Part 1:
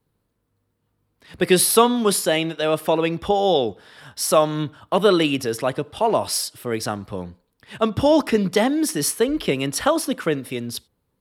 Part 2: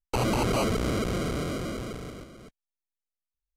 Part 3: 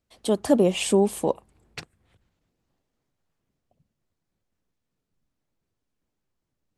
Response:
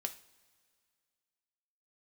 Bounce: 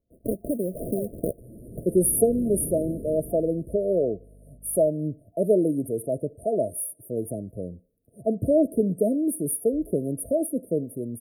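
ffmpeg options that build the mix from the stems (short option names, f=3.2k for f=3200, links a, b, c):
-filter_complex "[0:a]adelay=450,volume=-3.5dB[a];[1:a]equalizer=f=650:w=1.5:g=-8.5,aeval=exprs='val(0)+0.00398*(sin(2*PI*50*n/s)+sin(2*PI*2*50*n/s)/2+sin(2*PI*3*50*n/s)/3+sin(2*PI*4*50*n/s)/4+sin(2*PI*5*50*n/s)/5)':c=same,adelay=1250,volume=-1.5dB[b];[2:a]acompressor=threshold=-24dB:ratio=6,acrusher=samples=34:mix=1:aa=0.000001:lfo=1:lforange=34:lforate=1.1,volume=1dB,asplit=2[c][d];[d]apad=whole_len=212126[e];[b][e]sidechaincompress=threshold=-41dB:ratio=8:attack=37:release=1000[f];[a][f][c]amix=inputs=3:normalize=0,afftfilt=real='re*(1-between(b*sr/4096,690,8700))':imag='im*(1-between(b*sr/4096,690,8700))':win_size=4096:overlap=0.75"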